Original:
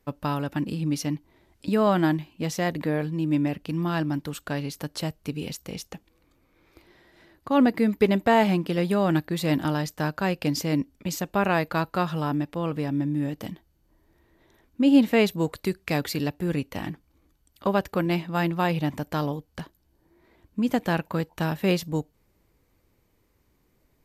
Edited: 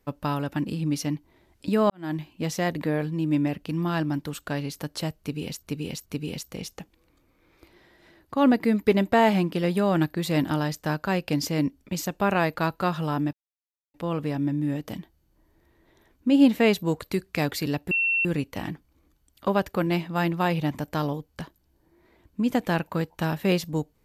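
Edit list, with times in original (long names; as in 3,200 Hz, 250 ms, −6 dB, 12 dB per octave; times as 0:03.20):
0:01.90–0:02.20: fade in quadratic
0:05.20–0:05.63: repeat, 3 plays
0:12.47: splice in silence 0.61 s
0:16.44: insert tone 2,710 Hz −20.5 dBFS 0.34 s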